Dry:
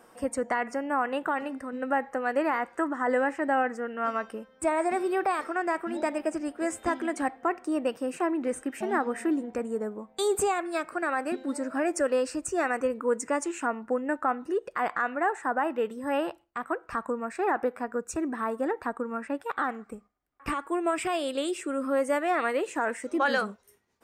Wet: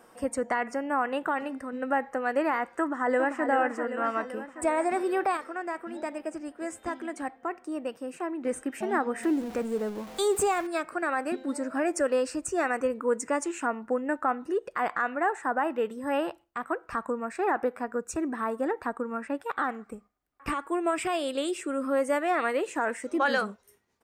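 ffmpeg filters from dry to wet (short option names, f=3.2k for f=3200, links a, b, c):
-filter_complex "[0:a]asplit=2[a][b];[b]afade=t=in:st=2.8:d=0.01,afade=t=out:st=3.45:d=0.01,aecho=0:1:390|780|1170|1560|1950|2340|2730|3120|3510:0.446684|0.290344|0.188724|0.12267|0.0797358|0.0518283|0.0336884|0.0218974|0.0142333[c];[a][c]amix=inputs=2:normalize=0,asettb=1/sr,asplit=3[d][e][f];[d]atrim=end=9.234[g];[e]atrim=start=9.23:end=10.67,asetpts=PTS-STARTPTS,afade=t=in:d=0.004:c=qsin,afade=t=out:st=1.436:d=0.004:c=qsin,aeval=exprs='val(0)+0.5*0.0112*sgn(val(0))':c=same[h];[f]atrim=start=10.666[i];[g][h]acrossfade=d=0.004:c1=hsin:c2=qsin[j];[j][i]acrossfade=d=0.004:c1=qsin:c2=hsin,asplit=3[k][l][m];[k]atrim=end=5.372[n];[l]atrim=start=5.368:end=8.452,asetpts=PTS-STARTPTS,volume=-5.5dB[o];[m]atrim=start=8.448[p];[n][o]acrossfade=d=0.004:c1=hsin:c2=hsin[q];[q][p]acrossfade=d=0.004:c1=hsin:c2=hsin"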